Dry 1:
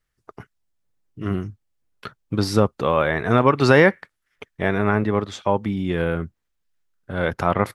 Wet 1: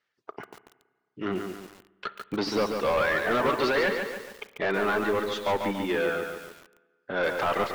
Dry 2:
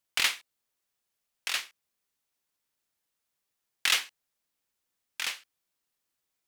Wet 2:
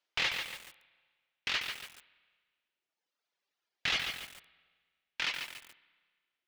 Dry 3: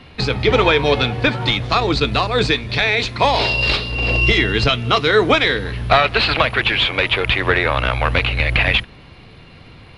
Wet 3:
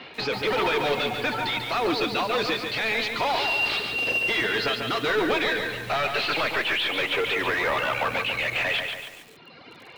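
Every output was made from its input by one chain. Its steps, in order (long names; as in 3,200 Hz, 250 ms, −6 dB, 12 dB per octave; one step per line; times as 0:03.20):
high-pass filter 330 Hz 12 dB per octave
reverb reduction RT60 1.5 s
high-shelf EQ 3,000 Hz +9 dB
notch filter 1,100 Hz, Q 20
brickwall limiter −8.5 dBFS
soft clipping −24.5 dBFS
high-frequency loss of the air 230 metres
spring reverb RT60 1.6 s, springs 31/52 ms, chirp 35 ms, DRR 15 dB
feedback echo at a low word length 142 ms, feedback 55%, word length 8 bits, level −5 dB
level +4 dB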